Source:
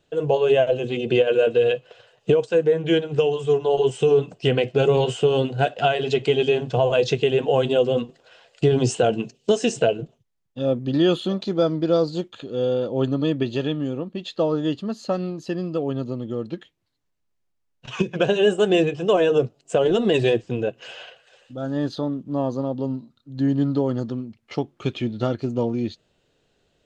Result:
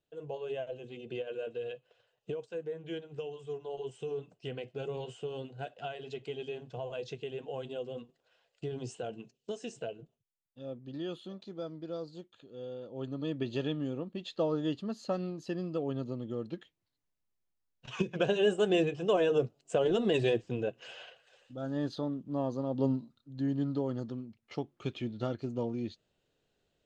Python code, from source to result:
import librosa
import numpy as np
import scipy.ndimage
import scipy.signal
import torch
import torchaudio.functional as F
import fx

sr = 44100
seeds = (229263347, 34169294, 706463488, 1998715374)

y = fx.gain(x, sr, db=fx.line((12.82, -20.0), (13.56, -9.0), (22.66, -9.0), (22.85, -2.0), (23.4, -11.0)))